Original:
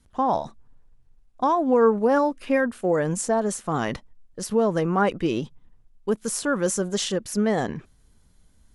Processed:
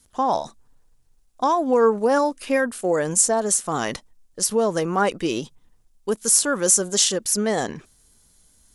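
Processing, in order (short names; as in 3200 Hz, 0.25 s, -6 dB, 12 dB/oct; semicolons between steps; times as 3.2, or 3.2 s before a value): tone controls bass -6 dB, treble +12 dB; gain +1.5 dB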